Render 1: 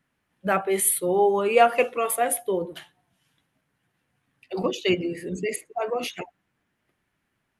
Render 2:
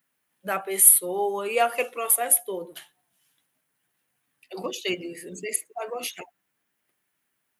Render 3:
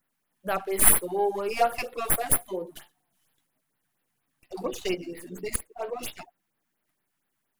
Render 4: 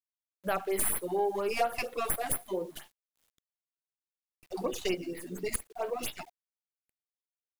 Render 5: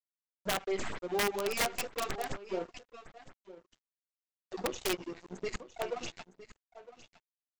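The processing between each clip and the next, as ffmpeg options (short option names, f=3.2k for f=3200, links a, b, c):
-af "aemphasis=mode=production:type=bsi,volume=-4.5dB"
-filter_complex "[0:a]acrossover=split=250|1200[a][b][c];[c]aeval=exprs='max(val(0),0)':c=same[d];[a][b][d]amix=inputs=3:normalize=0,afftfilt=real='re*(1-between(b*sr/1024,400*pow(7700/400,0.5+0.5*sin(2*PI*4.3*pts/sr))/1.41,400*pow(7700/400,0.5+0.5*sin(2*PI*4.3*pts/sr))*1.41))':imag='im*(1-between(b*sr/1024,400*pow(7700/400,0.5+0.5*sin(2*PI*4.3*pts/sr))/1.41,400*pow(7700/400,0.5+0.5*sin(2*PI*4.3*pts/sr))*1.41))':win_size=1024:overlap=0.75,volume=1dB"
-af "alimiter=limit=-11dB:level=0:latency=1:release=133,acompressor=threshold=-28dB:ratio=2,acrusher=bits=9:mix=0:aa=0.000001"
-af "aresample=16000,aeval=exprs='sgn(val(0))*max(abs(val(0))-0.0075,0)':c=same,aresample=44100,aecho=1:1:960:0.158,aeval=exprs='(mod(14.1*val(0)+1,2)-1)/14.1':c=same"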